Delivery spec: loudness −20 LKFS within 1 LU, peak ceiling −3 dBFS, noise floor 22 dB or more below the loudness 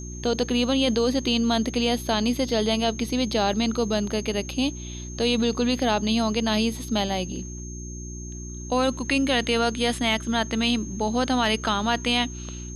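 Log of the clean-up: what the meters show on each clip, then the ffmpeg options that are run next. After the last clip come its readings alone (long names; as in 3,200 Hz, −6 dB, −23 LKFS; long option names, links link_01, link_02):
mains hum 60 Hz; hum harmonics up to 360 Hz; level of the hum −34 dBFS; interfering tone 6,400 Hz; level of the tone −40 dBFS; integrated loudness −24.0 LKFS; sample peak −10.0 dBFS; target loudness −20.0 LKFS
→ -af "bandreject=frequency=60:width_type=h:width=4,bandreject=frequency=120:width_type=h:width=4,bandreject=frequency=180:width_type=h:width=4,bandreject=frequency=240:width_type=h:width=4,bandreject=frequency=300:width_type=h:width=4,bandreject=frequency=360:width_type=h:width=4"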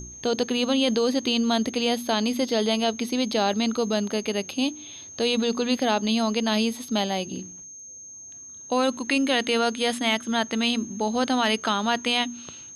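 mains hum none found; interfering tone 6,400 Hz; level of the tone −40 dBFS
→ -af "bandreject=frequency=6400:width=30"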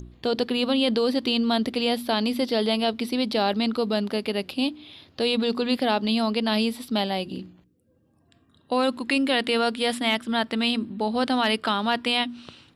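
interfering tone none found; integrated loudness −24.5 LKFS; sample peak −9.5 dBFS; target loudness −20.0 LKFS
→ -af "volume=4.5dB"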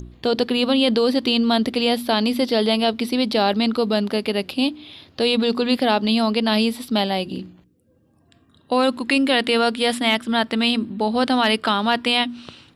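integrated loudness −20.0 LKFS; sample peak −5.0 dBFS; background noise floor −58 dBFS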